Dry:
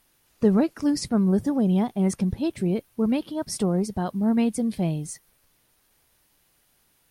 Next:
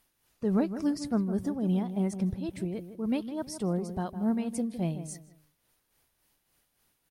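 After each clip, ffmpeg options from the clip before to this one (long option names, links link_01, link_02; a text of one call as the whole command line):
ffmpeg -i in.wav -filter_complex "[0:a]tremolo=f=3.5:d=0.54,asplit=2[link_01][link_02];[link_02]adelay=159,lowpass=frequency=1500:poles=1,volume=-10.5dB,asplit=2[link_03][link_04];[link_04]adelay=159,lowpass=frequency=1500:poles=1,volume=0.32,asplit=2[link_05][link_06];[link_06]adelay=159,lowpass=frequency=1500:poles=1,volume=0.32[link_07];[link_01][link_03][link_05][link_07]amix=inputs=4:normalize=0,volume=-5dB" out.wav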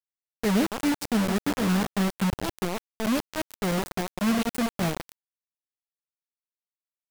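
ffmpeg -i in.wav -filter_complex "[0:a]acrossover=split=460[link_01][link_02];[link_02]acompressor=threshold=-37dB:ratio=2.5[link_03];[link_01][link_03]amix=inputs=2:normalize=0,acrusher=bits=4:mix=0:aa=0.000001,volume=3dB" out.wav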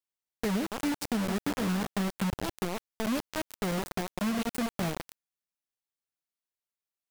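ffmpeg -i in.wav -af "acompressor=threshold=-27dB:ratio=6" out.wav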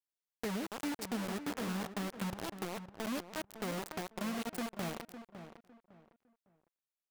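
ffmpeg -i in.wav -filter_complex "[0:a]lowshelf=frequency=140:gain=-9,asplit=2[link_01][link_02];[link_02]adelay=556,lowpass=frequency=2100:poles=1,volume=-10.5dB,asplit=2[link_03][link_04];[link_04]adelay=556,lowpass=frequency=2100:poles=1,volume=0.28,asplit=2[link_05][link_06];[link_06]adelay=556,lowpass=frequency=2100:poles=1,volume=0.28[link_07];[link_03][link_05][link_07]amix=inputs=3:normalize=0[link_08];[link_01][link_08]amix=inputs=2:normalize=0,volume=-6dB" out.wav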